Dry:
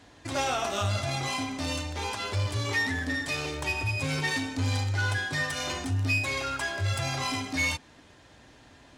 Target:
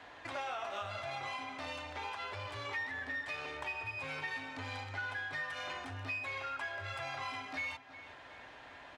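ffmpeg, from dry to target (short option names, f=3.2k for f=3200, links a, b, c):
-filter_complex "[0:a]acrossover=split=530 3200:gain=0.158 1 0.126[a][b][c];[a][b][c]amix=inputs=3:normalize=0,acompressor=threshold=-51dB:ratio=2.5,asplit=2[d][e];[e]adelay=365,lowpass=f=4.5k:p=1,volume=-14dB,asplit=2[f][g];[g]adelay=365,lowpass=f=4.5k:p=1,volume=0.49,asplit=2[h][i];[i]adelay=365,lowpass=f=4.5k:p=1,volume=0.49,asplit=2[j][k];[k]adelay=365,lowpass=f=4.5k:p=1,volume=0.49,asplit=2[l][m];[m]adelay=365,lowpass=f=4.5k:p=1,volume=0.49[n];[f][h][j][l][n]amix=inputs=5:normalize=0[o];[d][o]amix=inputs=2:normalize=0,volume=6dB"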